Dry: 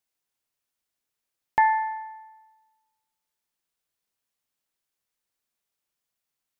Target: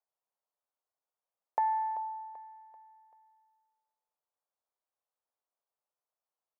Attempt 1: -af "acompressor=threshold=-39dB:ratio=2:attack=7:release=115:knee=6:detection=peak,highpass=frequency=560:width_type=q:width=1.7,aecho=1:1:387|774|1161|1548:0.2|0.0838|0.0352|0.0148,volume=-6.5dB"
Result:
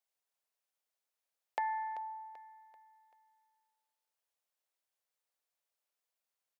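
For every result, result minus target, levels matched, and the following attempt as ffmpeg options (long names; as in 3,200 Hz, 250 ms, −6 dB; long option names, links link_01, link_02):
2,000 Hz band +12.0 dB; downward compressor: peak gain reduction +3.5 dB
-af "acompressor=threshold=-39dB:ratio=2:attack=7:release=115:knee=6:detection=peak,highpass=frequency=560:width_type=q:width=1.7,highshelf=frequency=1600:width_type=q:width=1.5:gain=-13,aecho=1:1:387|774|1161|1548:0.2|0.0838|0.0352|0.0148,volume=-6.5dB"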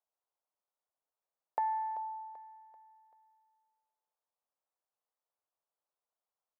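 downward compressor: peak gain reduction +3.5 dB
-af "acompressor=threshold=-32dB:ratio=2:attack=7:release=115:knee=6:detection=peak,highpass=frequency=560:width_type=q:width=1.7,highshelf=frequency=1600:width_type=q:width=1.5:gain=-13,aecho=1:1:387|774|1161|1548:0.2|0.0838|0.0352|0.0148,volume=-6.5dB"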